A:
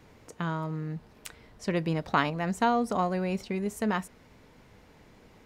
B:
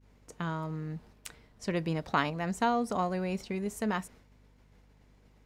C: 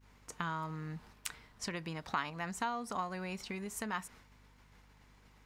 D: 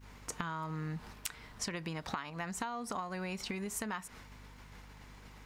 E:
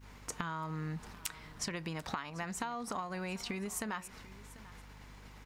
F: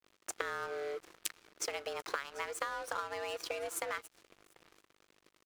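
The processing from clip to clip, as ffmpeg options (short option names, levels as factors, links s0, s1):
-af "equalizer=f=7500:t=o:w=1.6:g=2.5,agate=range=0.0224:threshold=0.00398:ratio=3:detection=peak,aeval=exprs='val(0)+0.00126*(sin(2*PI*50*n/s)+sin(2*PI*2*50*n/s)/2+sin(2*PI*3*50*n/s)/3+sin(2*PI*4*50*n/s)/4+sin(2*PI*5*50*n/s)/5)':c=same,volume=0.708"
-af "acompressor=threshold=0.0141:ratio=4,lowshelf=f=770:t=q:w=1.5:g=-6.5,volume=1.68"
-af "acompressor=threshold=0.00562:ratio=6,volume=2.82"
-af "aecho=1:1:741:0.112"
-af "afreqshift=280,aresample=32000,aresample=44100,aeval=exprs='sgn(val(0))*max(abs(val(0))-0.00447,0)':c=same,volume=1.33"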